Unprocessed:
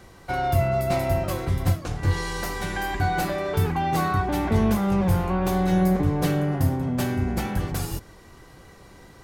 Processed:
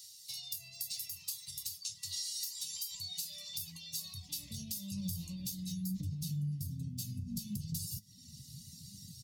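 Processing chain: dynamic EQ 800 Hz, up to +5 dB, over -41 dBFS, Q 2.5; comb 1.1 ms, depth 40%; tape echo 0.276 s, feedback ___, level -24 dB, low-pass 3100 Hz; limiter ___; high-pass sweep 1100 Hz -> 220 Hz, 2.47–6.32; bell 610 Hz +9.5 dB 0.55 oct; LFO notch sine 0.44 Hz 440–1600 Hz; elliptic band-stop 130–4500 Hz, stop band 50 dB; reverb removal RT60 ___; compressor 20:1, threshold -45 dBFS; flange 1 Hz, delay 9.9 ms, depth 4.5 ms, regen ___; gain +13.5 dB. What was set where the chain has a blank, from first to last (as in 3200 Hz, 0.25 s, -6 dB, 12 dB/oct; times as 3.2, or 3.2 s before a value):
90%, -16 dBFS, 0.79 s, +55%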